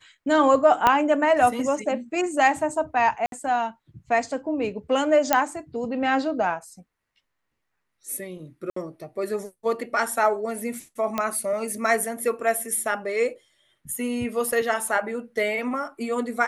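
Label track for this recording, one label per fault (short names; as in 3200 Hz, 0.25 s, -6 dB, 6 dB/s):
0.870000	0.870000	pop -5 dBFS
3.260000	3.320000	gap 62 ms
5.330000	5.330000	pop -3 dBFS
8.700000	8.760000	gap 64 ms
11.180000	11.180000	pop -11 dBFS
14.520000	14.520000	gap 3.5 ms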